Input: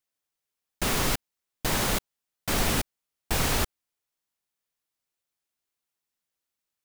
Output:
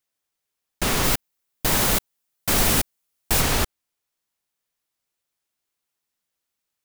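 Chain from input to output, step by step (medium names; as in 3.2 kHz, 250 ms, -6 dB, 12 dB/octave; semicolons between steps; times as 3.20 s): 1.03–3.40 s: treble shelf 12 kHz -> 5.8 kHz +7.5 dB; trim +4 dB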